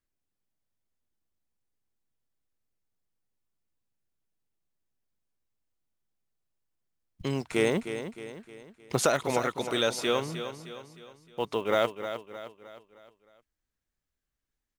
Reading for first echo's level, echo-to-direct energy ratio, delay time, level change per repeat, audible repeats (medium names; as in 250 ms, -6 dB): -10.0 dB, -9.0 dB, 309 ms, -6.5 dB, 4